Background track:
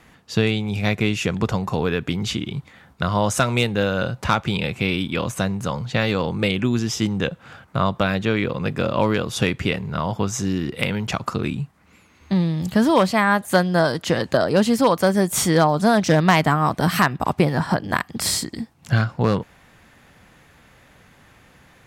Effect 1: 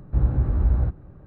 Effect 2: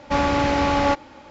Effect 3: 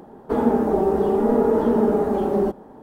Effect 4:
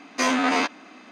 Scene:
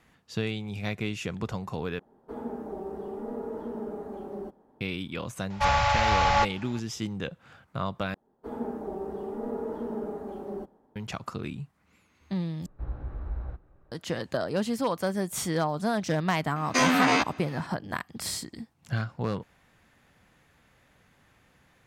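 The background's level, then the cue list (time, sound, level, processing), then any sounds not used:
background track −11 dB
0:01.99: overwrite with 3 −17.5 dB
0:05.50: mix in 2 + elliptic band-stop filter 110–660 Hz
0:08.14: overwrite with 3 −15.5 dB + multiband upward and downward expander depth 40%
0:12.66: overwrite with 1 −7 dB + parametric band 140 Hz −13.5 dB 2.7 octaves
0:16.56: mix in 4 −0.5 dB

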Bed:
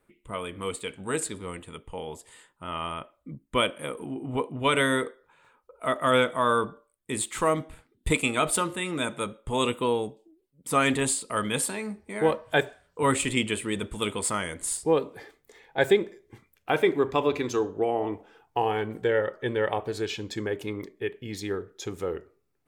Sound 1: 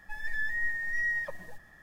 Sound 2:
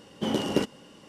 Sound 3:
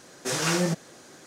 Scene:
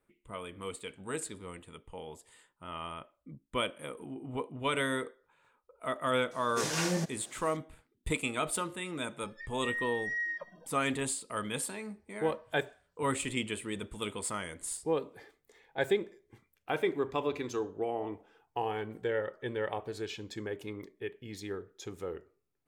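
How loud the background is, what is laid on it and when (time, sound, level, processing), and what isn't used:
bed −8 dB
0:06.31: mix in 3 −6 dB + notch filter 1,300 Hz, Q 11
0:09.13: mix in 1 −4 dB + noise reduction from a noise print of the clip's start 25 dB
not used: 2

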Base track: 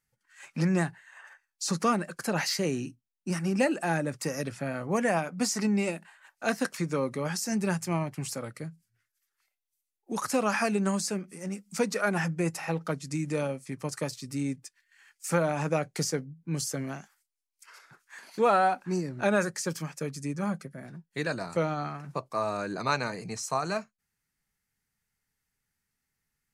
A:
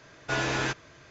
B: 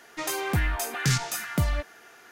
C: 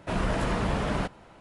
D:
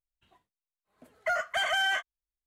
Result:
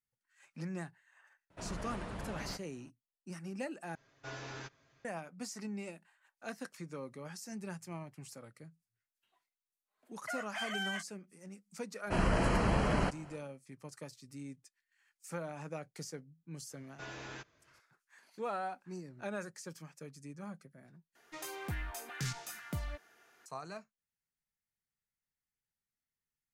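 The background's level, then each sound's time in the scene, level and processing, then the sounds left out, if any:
base track −15 dB
0:01.50: mix in C −15.5 dB
0:03.95: overwrite with A −18 dB + comb filter 7.4 ms, depth 56%
0:09.01: mix in D −9.5 dB + high-pass filter 980 Hz 6 dB per octave
0:12.03: mix in C −2.5 dB, fades 0.10 s + Butterworth band-reject 3,600 Hz, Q 5.8
0:16.70: mix in A −18 dB
0:21.15: overwrite with B −14 dB

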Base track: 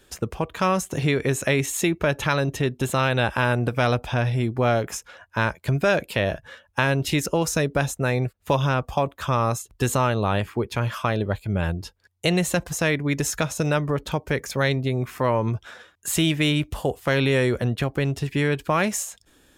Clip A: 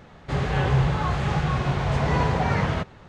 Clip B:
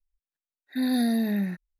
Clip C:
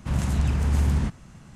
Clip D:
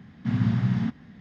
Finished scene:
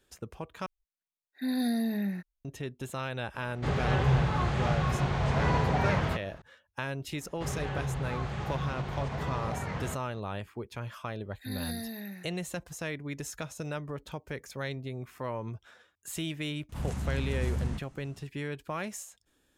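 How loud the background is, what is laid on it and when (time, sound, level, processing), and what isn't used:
base track −14 dB
0:00.66: overwrite with B −5 dB
0:03.34: mix in A −4.5 dB
0:07.12: mix in A −10 dB + brickwall limiter −15.5 dBFS
0:10.69: mix in B −10 dB + spectral tilt +2.5 dB per octave
0:16.69: mix in C −9.5 dB
not used: D

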